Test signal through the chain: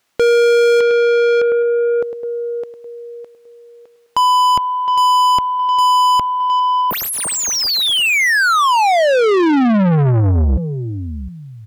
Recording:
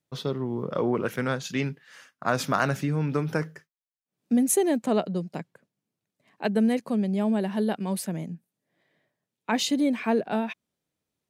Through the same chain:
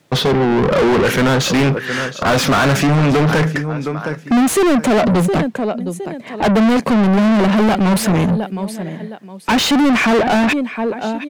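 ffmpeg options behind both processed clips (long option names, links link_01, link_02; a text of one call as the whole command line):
ffmpeg -i in.wav -filter_complex "[0:a]lowshelf=frequency=330:gain=11.5,aecho=1:1:714|1428:0.0794|0.0207,asplit=2[link_01][link_02];[link_02]highpass=frequency=720:poles=1,volume=37dB,asoftclip=type=tanh:threshold=-6.5dB[link_03];[link_01][link_03]amix=inputs=2:normalize=0,lowpass=frequency=3300:poles=1,volume=-6dB" out.wav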